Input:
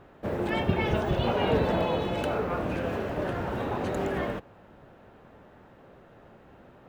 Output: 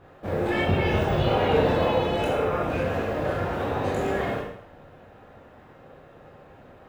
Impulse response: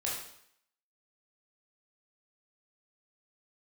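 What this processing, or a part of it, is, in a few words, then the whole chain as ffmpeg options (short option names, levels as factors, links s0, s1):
bathroom: -filter_complex "[1:a]atrim=start_sample=2205[s0];[0:a][s0]afir=irnorm=-1:irlink=0,asettb=1/sr,asplit=3[s1][s2][s3];[s1]atrim=end=2.234[s4];[s2]atrim=start=2.23:end=2.69,asetpts=PTS-STARTPTS,afade=t=in:d=0.004:c=qsin,afade=t=out:st=0.456:d=0.004:c=qsin,bandreject=f=4400:w=7.2[s5];[s3]atrim=start=2.686[s6];[s4][s5]acrossfade=d=0.004:c1=hsin:c2=qsin[s7];[s7][s6]acrossfade=d=0.004:c1=qsin:c2=hsin"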